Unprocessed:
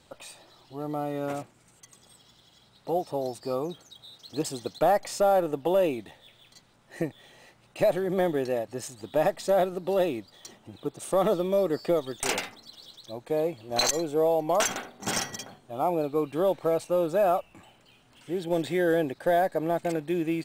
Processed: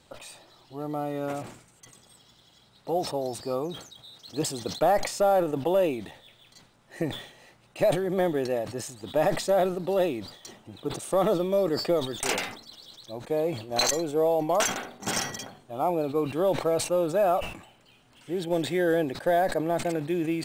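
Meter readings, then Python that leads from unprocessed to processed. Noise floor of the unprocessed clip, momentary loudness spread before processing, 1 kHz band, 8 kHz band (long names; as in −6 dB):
−61 dBFS, 16 LU, +0.5 dB, +1.0 dB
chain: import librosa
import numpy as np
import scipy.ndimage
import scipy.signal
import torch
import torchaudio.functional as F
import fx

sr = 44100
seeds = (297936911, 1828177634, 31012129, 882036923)

y = fx.sustainer(x, sr, db_per_s=95.0)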